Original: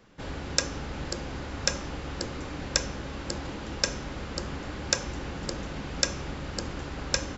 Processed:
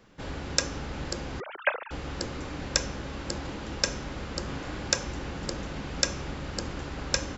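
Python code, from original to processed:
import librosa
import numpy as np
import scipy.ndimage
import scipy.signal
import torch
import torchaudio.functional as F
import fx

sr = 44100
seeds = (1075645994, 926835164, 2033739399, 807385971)

y = fx.sine_speech(x, sr, at=(1.4, 1.91))
y = fx.doubler(y, sr, ms=36.0, db=-5.5, at=(4.45, 4.88))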